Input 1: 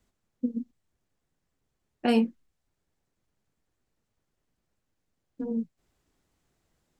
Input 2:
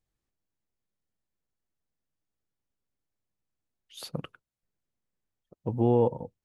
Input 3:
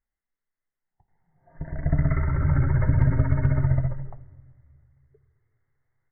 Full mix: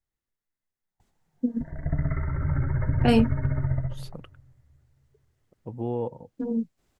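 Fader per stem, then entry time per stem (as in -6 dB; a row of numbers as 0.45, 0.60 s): +3.0, -6.5, -4.5 dB; 1.00, 0.00, 0.00 s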